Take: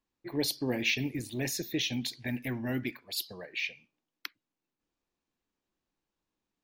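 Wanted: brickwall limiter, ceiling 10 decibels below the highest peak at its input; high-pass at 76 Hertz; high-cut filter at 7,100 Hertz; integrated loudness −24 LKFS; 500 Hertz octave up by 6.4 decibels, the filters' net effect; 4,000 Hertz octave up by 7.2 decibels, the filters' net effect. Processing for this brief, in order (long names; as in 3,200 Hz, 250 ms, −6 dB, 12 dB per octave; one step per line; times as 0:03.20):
high-pass filter 76 Hz
low-pass filter 7,100 Hz
parametric band 500 Hz +8 dB
parametric band 4,000 Hz +9 dB
level +8 dB
brickwall limiter −13.5 dBFS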